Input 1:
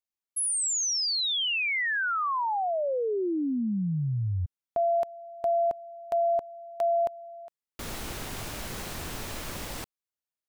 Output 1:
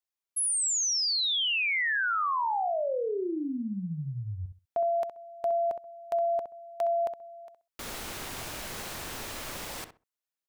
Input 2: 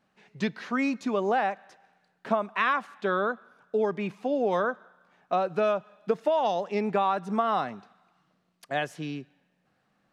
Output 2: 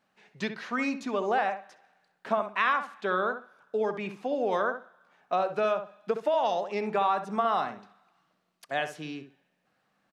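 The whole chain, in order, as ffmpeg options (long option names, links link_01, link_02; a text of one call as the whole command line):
ffmpeg -i in.wav -filter_complex "[0:a]lowshelf=frequency=310:gain=-8.5,asplit=2[link_01][link_02];[link_02]adelay=65,lowpass=frequency=1800:poles=1,volume=-8dB,asplit=2[link_03][link_04];[link_04]adelay=65,lowpass=frequency=1800:poles=1,volume=0.2,asplit=2[link_05][link_06];[link_06]adelay=65,lowpass=frequency=1800:poles=1,volume=0.2[link_07];[link_01][link_03][link_05][link_07]amix=inputs=4:normalize=0" out.wav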